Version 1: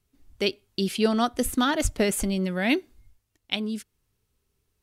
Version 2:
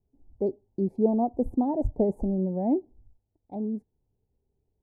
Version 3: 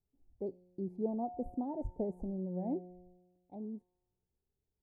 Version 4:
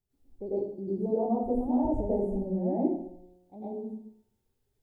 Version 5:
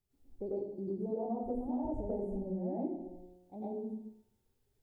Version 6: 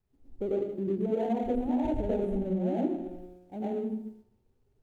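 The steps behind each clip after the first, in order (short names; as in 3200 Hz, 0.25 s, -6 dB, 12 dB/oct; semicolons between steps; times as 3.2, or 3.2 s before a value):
elliptic low-pass 850 Hz, stop band 40 dB
resonator 180 Hz, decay 1.3 s, mix 70%; gain -2 dB
plate-style reverb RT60 0.63 s, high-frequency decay 0.85×, pre-delay 85 ms, DRR -9.5 dB
compressor 2.5:1, threshold -37 dBFS, peak gain reduction 11 dB
median filter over 25 samples; gain +7.5 dB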